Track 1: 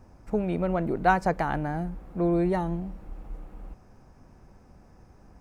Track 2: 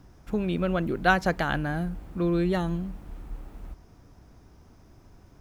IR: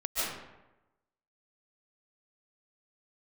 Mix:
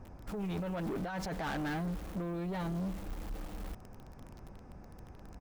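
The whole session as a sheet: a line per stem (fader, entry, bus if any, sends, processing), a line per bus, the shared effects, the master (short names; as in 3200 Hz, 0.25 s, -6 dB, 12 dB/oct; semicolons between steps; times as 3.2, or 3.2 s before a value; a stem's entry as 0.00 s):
-1.0 dB, 0.00 s, no send, high shelf 4100 Hz -10.5 dB
-4.5 dB, 7.9 ms, polarity flipped, no send, low shelf 180 Hz -7 dB; requantised 8-bit, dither none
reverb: off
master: negative-ratio compressor -30 dBFS, ratio -1; soft clip -33 dBFS, distortion -8 dB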